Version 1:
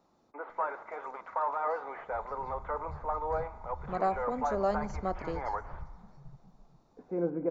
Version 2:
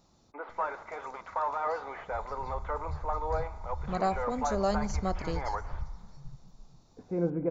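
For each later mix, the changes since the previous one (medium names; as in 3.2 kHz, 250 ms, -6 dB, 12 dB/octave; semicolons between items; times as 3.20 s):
second sound -6.5 dB; master: remove three-band isolator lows -14 dB, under 210 Hz, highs -13 dB, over 2.3 kHz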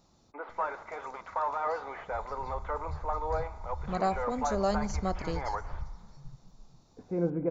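second sound: send off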